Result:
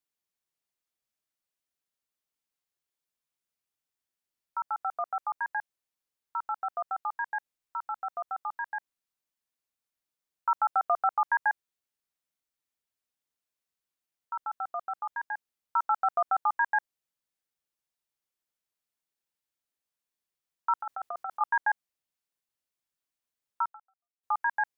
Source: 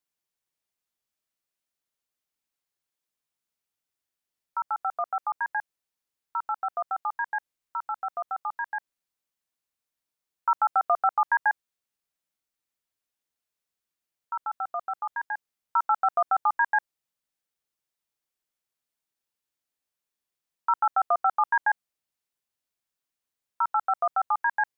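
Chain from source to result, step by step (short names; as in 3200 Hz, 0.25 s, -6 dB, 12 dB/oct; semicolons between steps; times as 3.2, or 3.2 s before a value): 20.8–21.41 negative-ratio compressor -32 dBFS, ratio -1; 23.63–24.23 fade out exponential; gain -3 dB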